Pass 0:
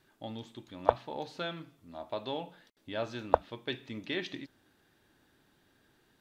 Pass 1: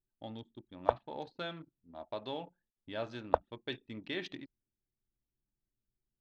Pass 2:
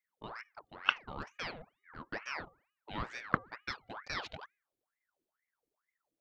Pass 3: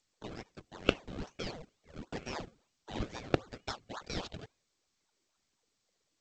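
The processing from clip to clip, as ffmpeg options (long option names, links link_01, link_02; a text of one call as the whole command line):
ffmpeg -i in.wav -af "anlmdn=0.0251,volume=-3.5dB" out.wav
ffmpeg -i in.wav -af "bandreject=frequency=422.5:width_type=h:width=4,bandreject=frequency=845:width_type=h:width=4,bandreject=frequency=1267.5:width_type=h:width=4,bandreject=frequency=1690:width_type=h:width=4,aeval=exprs='val(0)*sin(2*PI*1200*n/s+1200*0.75/2.2*sin(2*PI*2.2*n/s))':channel_layout=same,volume=2dB" out.wav
ffmpeg -i in.wav -filter_complex "[0:a]acrossover=split=280|560|2700[link_01][link_02][link_03][link_04];[link_03]acrusher=samples=32:mix=1:aa=0.000001:lfo=1:lforange=32:lforate=3.7[link_05];[link_01][link_02][link_05][link_04]amix=inputs=4:normalize=0,volume=2.5dB" -ar 16000 -c:a g722 out.g722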